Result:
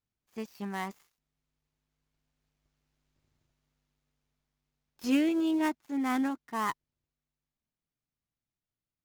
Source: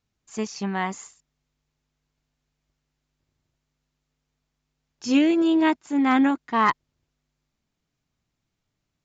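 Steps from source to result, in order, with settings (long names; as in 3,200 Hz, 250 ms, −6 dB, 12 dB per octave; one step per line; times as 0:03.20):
gap after every zero crossing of 0.068 ms
source passing by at 0:03.22, 6 m/s, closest 5.6 metres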